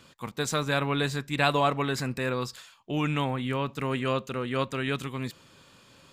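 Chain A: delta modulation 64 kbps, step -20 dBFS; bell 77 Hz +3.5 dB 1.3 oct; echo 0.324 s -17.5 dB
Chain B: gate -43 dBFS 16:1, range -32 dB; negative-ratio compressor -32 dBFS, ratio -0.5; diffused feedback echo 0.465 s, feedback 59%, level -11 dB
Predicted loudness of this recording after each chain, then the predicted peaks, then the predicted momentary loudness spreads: -24.5, -33.5 LUFS; -8.5, -17.0 dBFS; 2, 7 LU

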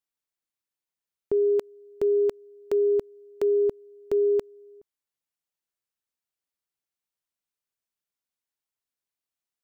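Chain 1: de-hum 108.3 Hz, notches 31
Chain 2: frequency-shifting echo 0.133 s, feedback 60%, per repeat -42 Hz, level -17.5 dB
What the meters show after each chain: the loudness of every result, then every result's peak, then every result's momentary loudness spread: -25.5, -25.0 LUFS; -18.0, -16.5 dBFS; 5, 17 LU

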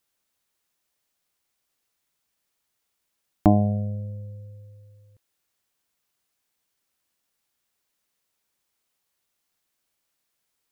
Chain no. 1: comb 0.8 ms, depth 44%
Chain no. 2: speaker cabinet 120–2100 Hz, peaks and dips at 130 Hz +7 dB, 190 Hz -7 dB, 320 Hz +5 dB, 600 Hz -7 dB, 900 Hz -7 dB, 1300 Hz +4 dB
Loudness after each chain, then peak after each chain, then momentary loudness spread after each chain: -22.5, -25.0 LUFS; -3.0, -4.0 dBFS; 19, 20 LU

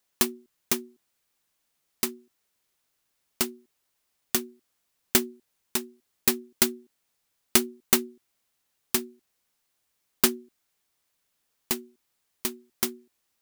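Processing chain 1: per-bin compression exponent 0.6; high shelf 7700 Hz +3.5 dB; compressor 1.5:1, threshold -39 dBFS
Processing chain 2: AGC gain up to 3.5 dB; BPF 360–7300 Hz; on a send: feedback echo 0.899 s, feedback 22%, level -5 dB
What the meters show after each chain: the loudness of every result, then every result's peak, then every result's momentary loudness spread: -31.0, -31.5 LUFS; -5.0, -5.5 dBFS; 17, 21 LU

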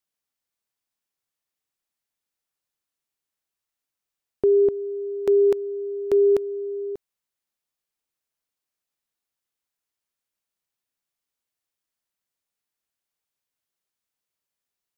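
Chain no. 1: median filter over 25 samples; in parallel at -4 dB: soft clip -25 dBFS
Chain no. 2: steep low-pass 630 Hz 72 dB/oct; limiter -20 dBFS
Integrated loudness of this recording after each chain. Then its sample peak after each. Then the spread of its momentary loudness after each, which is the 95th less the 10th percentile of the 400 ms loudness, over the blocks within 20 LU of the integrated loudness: -20.5, -27.5 LUFS; -12.5, -20.0 dBFS; 10, 7 LU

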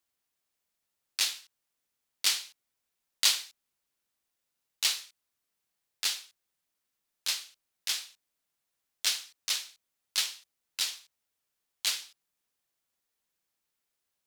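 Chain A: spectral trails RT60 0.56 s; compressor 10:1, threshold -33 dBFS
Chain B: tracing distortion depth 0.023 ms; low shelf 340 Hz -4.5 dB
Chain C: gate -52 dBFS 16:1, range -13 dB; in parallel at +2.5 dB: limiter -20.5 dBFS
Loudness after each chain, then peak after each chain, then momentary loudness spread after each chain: -38.0, -31.0, -25.5 LUFS; -13.0, -10.0, -7.0 dBFS; 15, 18, 17 LU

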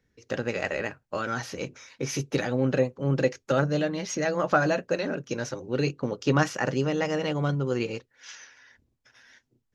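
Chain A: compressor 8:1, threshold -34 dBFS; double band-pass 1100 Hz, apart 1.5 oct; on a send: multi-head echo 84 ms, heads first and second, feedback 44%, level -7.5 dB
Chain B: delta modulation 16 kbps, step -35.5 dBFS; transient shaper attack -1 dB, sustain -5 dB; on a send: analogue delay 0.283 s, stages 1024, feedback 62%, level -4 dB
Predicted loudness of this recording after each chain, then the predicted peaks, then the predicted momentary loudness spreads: -46.5, -28.5 LUFS; -29.0, -12.0 dBFS; 12, 11 LU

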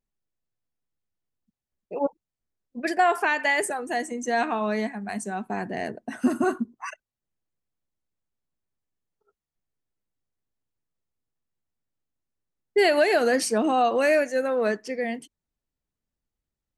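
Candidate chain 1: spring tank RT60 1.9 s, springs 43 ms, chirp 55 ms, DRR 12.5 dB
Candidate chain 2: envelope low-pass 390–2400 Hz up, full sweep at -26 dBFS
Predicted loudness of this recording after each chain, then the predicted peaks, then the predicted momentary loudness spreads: -24.5, -22.0 LUFS; -10.0, -4.5 dBFS; 13, 13 LU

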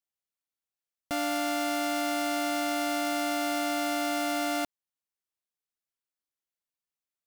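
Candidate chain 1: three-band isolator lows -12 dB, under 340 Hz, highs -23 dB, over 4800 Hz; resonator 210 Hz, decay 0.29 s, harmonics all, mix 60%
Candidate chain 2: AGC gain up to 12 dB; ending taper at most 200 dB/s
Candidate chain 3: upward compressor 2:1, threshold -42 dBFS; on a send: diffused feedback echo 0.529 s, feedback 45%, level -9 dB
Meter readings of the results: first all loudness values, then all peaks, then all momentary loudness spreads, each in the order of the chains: -37.5, -17.5, -30.0 LUFS; -25.0, -9.5, -19.5 dBFS; 2, 2, 14 LU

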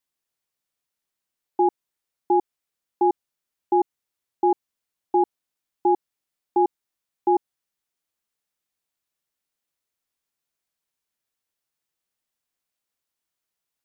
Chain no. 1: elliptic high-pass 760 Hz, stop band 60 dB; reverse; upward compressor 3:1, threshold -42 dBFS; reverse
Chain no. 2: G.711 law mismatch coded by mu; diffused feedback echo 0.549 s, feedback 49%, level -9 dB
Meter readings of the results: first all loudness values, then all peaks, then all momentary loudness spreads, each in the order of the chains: -28.0, -26.5 LUFS; -17.0, -11.0 dBFS; 5, 15 LU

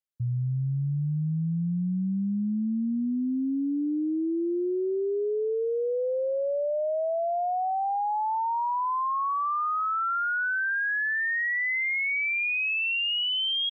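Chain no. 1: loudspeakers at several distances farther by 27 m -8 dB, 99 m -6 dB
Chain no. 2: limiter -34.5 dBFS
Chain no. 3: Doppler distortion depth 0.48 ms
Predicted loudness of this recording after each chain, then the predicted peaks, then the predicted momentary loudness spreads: -25.5, -37.0, -27.0 LUFS; -18.5, -34.5, -24.0 dBFS; 4, 4, 5 LU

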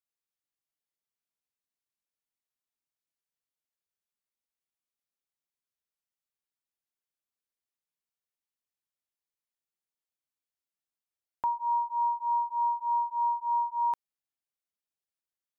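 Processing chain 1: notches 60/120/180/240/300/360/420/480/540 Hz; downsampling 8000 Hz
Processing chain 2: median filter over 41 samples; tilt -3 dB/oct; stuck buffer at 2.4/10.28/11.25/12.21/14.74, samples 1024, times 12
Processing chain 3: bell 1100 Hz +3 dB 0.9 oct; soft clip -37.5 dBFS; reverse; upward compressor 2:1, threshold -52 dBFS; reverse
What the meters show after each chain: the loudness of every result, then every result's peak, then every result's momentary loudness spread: -29.5, -41.5, -39.0 LUFS; -22.5, -32.5, -37.0 dBFS; 4, 7, 4 LU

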